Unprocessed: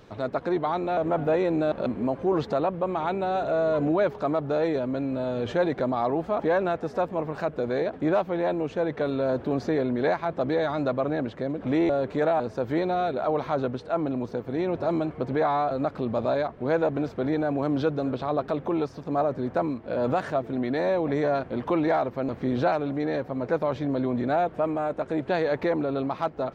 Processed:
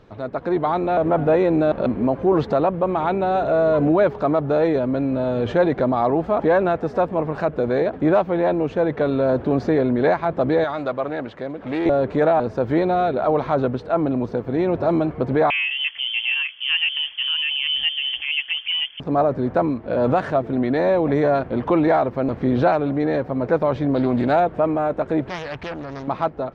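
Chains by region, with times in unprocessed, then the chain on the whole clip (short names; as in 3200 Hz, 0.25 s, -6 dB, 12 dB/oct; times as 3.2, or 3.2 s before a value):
10.64–11.86 low shelf 470 Hz -11.5 dB + Doppler distortion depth 0.12 ms
15.5–19 air absorption 490 m + inverted band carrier 3300 Hz
23.94–24.4 high shelf 3600 Hz +11.5 dB + Doppler distortion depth 0.17 ms
25.29–26.08 bell 440 Hz -14.5 dB 2.4 oct + Doppler distortion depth 0.58 ms
whole clip: LPF 2800 Hz 6 dB/oct; low shelf 69 Hz +5.5 dB; AGC gain up to 6.5 dB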